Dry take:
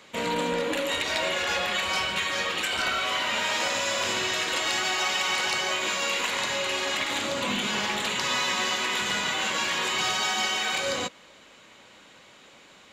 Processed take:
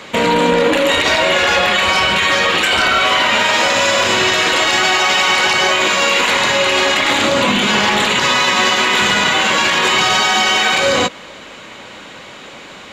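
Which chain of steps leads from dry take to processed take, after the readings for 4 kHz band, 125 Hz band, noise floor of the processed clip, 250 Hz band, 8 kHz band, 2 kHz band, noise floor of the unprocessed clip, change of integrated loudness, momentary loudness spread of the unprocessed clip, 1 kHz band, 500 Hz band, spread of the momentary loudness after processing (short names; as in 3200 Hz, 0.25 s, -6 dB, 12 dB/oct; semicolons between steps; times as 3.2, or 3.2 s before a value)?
+12.5 dB, +15.0 dB, -35 dBFS, +15.0 dB, +10.0 dB, +14.0 dB, -53 dBFS, +13.5 dB, 3 LU, +14.5 dB, +15.0 dB, 1 LU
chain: high shelf 5200 Hz -7.5 dB; maximiser +22.5 dB; gain -4 dB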